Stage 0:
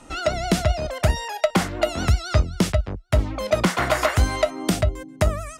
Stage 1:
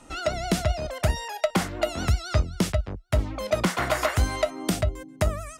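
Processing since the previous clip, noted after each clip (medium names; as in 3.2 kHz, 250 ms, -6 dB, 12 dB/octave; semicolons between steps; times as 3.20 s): treble shelf 10 kHz +4 dB; trim -4 dB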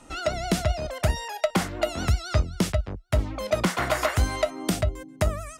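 no audible change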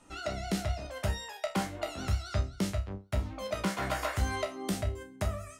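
chord resonator C2 fifth, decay 0.28 s; trim +1.5 dB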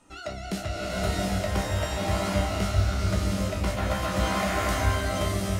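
swelling reverb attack 750 ms, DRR -6.5 dB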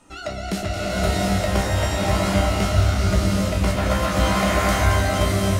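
echo whose repeats swap between lows and highs 112 ms, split 910 Hz, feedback 80%, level -7.5 dB; trim +5.5 dB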